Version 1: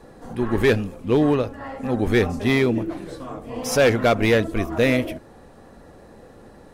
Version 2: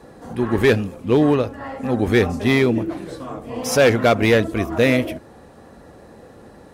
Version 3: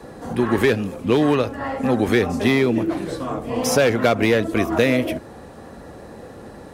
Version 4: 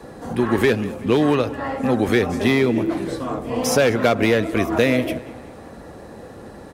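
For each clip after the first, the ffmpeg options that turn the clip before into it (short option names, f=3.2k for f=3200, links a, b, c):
-af "highpass=51,volume=2.5dB"
-filter_complex "[0:a]acrossover=split=160|1100[a][b][c];[a]acompressor=threshold=-37dB:ratio=4[d];[b]acompressor=threshold=-21dB:ratio=4[e];[c]acompressor=threshold=-28dB:ratio=4[f];[d][e][f]amix=inputs=3:normalize=0,volume=5dB"
-filter_complex "[0:a]asplit=2[a][b];[b]adelay=189,lowpass=f=3.6k:p=1,volume=-17.5dB,asplit=2[c][d];[d]adelay=189,lowpass=f=3.6k:p=1,volume=0.55,asplit=2[e][f];[f]adelay=189,lowpass=f=3.6k:p=1,volume=0.55,asplit=2[g][h];[h]adelay=189,lowpass=f=3.6k:p=1,volume=0.55,asplit=2[i][j];[j]adelay=189,lowpass=f=3.6k:p=1,volume=0.55[k];[a][c][e][g][i][k]amix=inputs=6:normalize=0"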